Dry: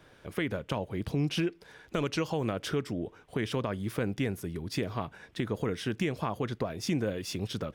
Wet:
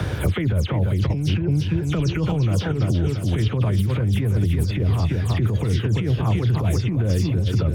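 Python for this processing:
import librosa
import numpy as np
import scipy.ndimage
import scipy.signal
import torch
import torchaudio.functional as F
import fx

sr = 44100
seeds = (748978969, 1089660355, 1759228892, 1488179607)

y = fx.spec_delay(x, sr, highs='early', ms=102)
y = scipy.signal.sosfilt(scipy.signal.butter(2, 57.0, 'highpass', fs=sr, output='sos'), y)
y = fx.peak_eq(y, sr, hz=81.0, db=13.0, octaves=1.2)
y = fx.echo_feedback(y, sr, ms=338, feedback_pct=41, wet_db=-8.0)
y = fx.over_compress(y, sr, threshold_db=-31.0, ratio=-1.0)
y = fx.low_shelf(y, sr, hz=230.0, db=11.5)
y = fx.band_squash(y, sr, depth_pct=100)
y = y * librosa.db_to_amplitude(3.0)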